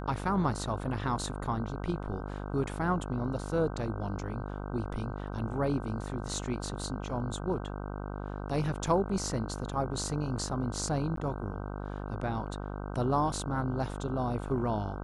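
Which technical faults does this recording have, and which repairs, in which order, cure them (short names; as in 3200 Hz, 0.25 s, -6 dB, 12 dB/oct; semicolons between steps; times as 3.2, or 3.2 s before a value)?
buzz 50 Hz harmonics 31 -38 dBFS
11.16–11.17 gap 13 ms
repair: de-hum 50 Hz, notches 31; interpolate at 11.16, 13 ms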